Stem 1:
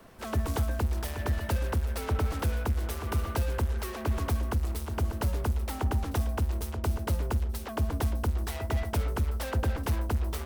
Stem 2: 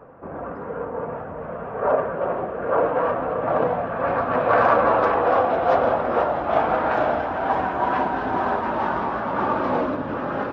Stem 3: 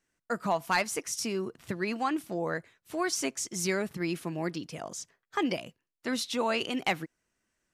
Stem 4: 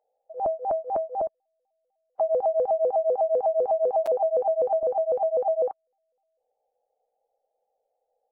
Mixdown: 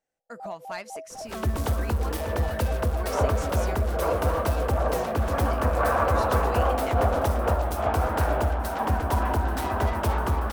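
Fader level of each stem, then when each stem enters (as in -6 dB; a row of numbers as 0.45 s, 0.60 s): +2.5 dB, -6.5 dB, -10.0 dB, -12.5 dB; 1.10 s, 1.30 s, 0.00 s, 0.00 s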